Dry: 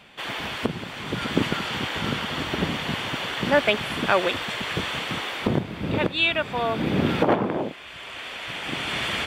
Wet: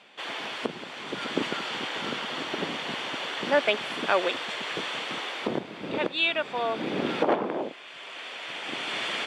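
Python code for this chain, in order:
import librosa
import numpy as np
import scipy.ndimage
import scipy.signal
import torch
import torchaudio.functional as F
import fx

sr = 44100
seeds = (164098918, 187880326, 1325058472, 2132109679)

y = fx.bandpass_edges(x, sr, low_hz=320.0, high_hz=7600.0)
y = fx.peak_eq(y, sr, hz=1700.0, db=-2.5, octaves=2.2)
y = y * 10.0 ** (-1.5 / 20.0)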